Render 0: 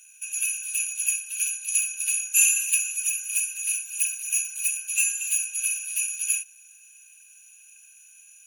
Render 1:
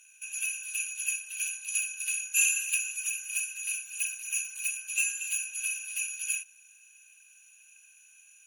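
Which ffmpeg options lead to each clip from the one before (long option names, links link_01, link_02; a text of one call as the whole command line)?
ffmpeg -i in.wav -af "aemphasis=mode=reproduction:type=cd" out.wav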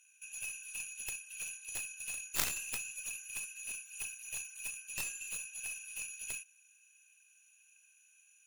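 ffmpeg -i in.wav -af "aeval=exprs='0.299*(cos(1*acos(clip(val(0)/0.299,-1,1)))-cos(1*PI/2))+0.133*(cos(3*acos(clip(val(0)/0.299,-1,1)))-cos(3*PI/2))+0.0335*(cos(4*acos(clip(val(0)/0.299,-1,1)))-cos(4*PI/2))+0.00944*(cos(6*acos(clip(val(0)/0.299,-1,1)))-cos(6*PI/2))':channel_layout=same,volume=1dB" out.wav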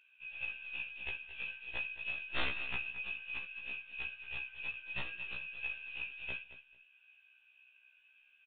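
ffmpeg -i in.wav -af "aresample=8000,asoftclip=type=hard:threshold=-30dB,aresample=44100,aecho=1:1:221|442:0.2|0.0359,afftfilt=real='re*1.73*eq(mod(b,3),0)':imag='im*1.73*eq(mod(b,3),0)':win_size=2048:overlap=0.75,volume=7.5dB" out.wav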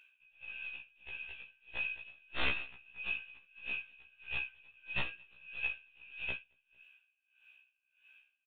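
ffmpeg -i in.wav -af "aeval=exprs='val(0)*pow(10,-25*(0.5-0.5*cos(2*PI*1.6*n/s))/20)':channel_layout=same,volume=5dB" out.wav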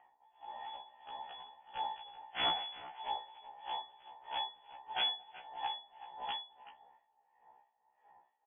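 ffmpeg -i in.wav -filter_complex "[0:a]asplit=2[link_01][link_02];[link_02]adelay=380,highpass=300,lowpass=3400,asoftclip=type=hard:threshold=-29dB,volume=-13dB[link_03];[link_01][link_03]amix=inputs=2:normalize=0,acrossover=split=2300[link_04][link_05];[link_04]aeval=exprs='val(0)*(1-0.7/2+0.7/2*cos(2*PI*3*n/s))':channel_layout=same[link_06];[link_05]aeval=exprs='val(0)*(1-0.7/2-0.7/2*cos(2*PI*3*n/s))':channel_layout=same[link_07];[link_06][link_07]amix=inputs=2:normalize=0,lowpass=frequency=2900:width_type=q:width=0.5098,lowpass=frequency=2900:width_type=q:width=0.6013,lowpass=frequency=2900:width_type=q:width=0.9,lowpass=frequency=2900:width_type=q:width=2.563,afreqshift=-3400,volume=3dB" out.wav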